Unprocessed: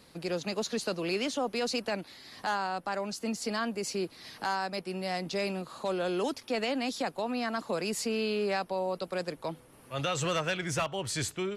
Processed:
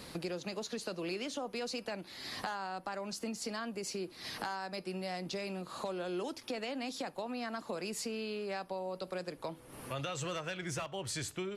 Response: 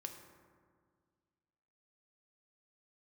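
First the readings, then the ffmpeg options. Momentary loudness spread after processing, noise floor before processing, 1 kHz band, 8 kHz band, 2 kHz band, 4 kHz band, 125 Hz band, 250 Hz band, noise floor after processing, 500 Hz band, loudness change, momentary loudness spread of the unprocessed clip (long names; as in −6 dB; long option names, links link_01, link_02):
3 LU, −57 dBFS, −7.5 dB, −5.0 dB, −7.0 dB, −6.0 dB, −6.0 dB, −6.5 dB, −55 dBFS, −7.0 dB, −7.0 dB, 6 LU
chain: -filter_complex "[0:a]acompressor=threshold=-47dB:ratio=5,asplit=2[link_01][link_02];[1:a]atrim=start_sample=2205,atrim=end_sample=3528[link_03];[link_02][link_03]afir=irnorm=-1:irlink=0,volume=-4.5dB[link_04];[link_01][link_04]amix=inputs=2:normalize=0,volume=6dB"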